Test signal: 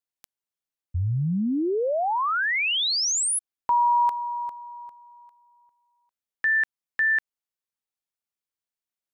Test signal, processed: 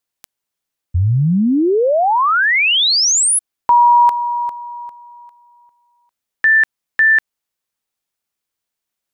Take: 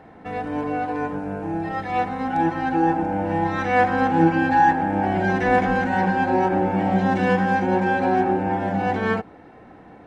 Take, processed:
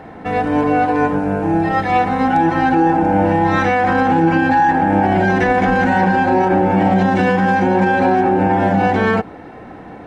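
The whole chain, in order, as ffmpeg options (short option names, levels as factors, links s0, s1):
-af "alimiter=level_in=5.96:limit=0.891:release=50:level=0:latency=1,volume=0.562"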